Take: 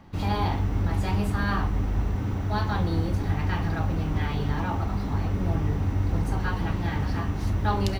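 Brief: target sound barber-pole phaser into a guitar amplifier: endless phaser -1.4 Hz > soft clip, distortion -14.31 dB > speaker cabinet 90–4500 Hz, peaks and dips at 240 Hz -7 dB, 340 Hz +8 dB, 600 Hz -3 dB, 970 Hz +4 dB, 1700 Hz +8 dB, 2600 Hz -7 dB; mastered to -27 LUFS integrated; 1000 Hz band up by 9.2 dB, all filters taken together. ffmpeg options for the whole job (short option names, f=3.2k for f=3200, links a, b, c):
-filter_complex "[0:a]equalizer=f=1k:t=o:g=8.5,asplit=2[a][b];[b]afreqshift=-1.4[c];[a][c]amix=inputs=2:normalize=1,asoftclip=threshold=-22dB,highpass=90,equalizer=f=240:t=q:w=4:g=-7,equalizer=f=340:t=q:w=4:g=8,equalizer=f=600:t=q:w=4:g=-3,equalizer=f=970:t=q:w=4:g=4,equalizer=f=1.7k:t=q:w=4:g=8,equalizer=f=2.6k:t=q:w=4:g=-7,lowpass=f=4.5k:w=0.5412,lowpass=f=4.5k:w=1.3066,volume=3.5dB"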